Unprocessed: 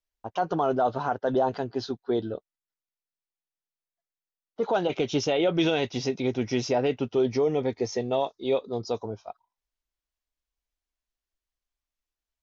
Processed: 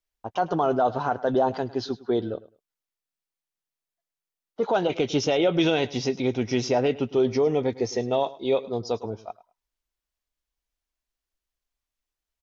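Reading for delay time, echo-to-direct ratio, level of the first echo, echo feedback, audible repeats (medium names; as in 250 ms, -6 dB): 105 ms, -19.0 dB, -19.0 dB, 19%, 2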